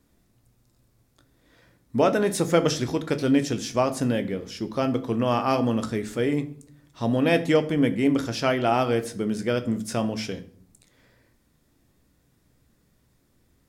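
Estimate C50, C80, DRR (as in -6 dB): 16.0 dB, 19.0 dB, 9.0 dB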